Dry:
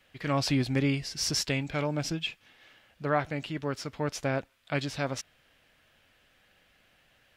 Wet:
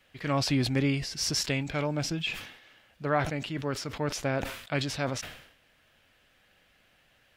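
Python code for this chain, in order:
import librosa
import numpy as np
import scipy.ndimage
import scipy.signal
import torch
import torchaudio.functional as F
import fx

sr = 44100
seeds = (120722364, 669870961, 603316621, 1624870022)

y = fx.sustainer(x, sr, db_per_s=78.0)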